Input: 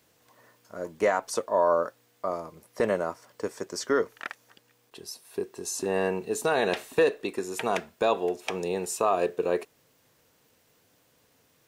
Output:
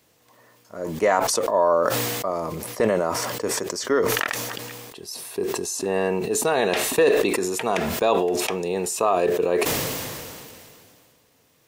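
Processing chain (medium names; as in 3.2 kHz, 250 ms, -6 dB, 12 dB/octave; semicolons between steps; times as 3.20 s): peaking EQ 1.5 kHz -4 dB 0.22 oct; decay stretcher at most 25 dB/s; trim +3.5 dB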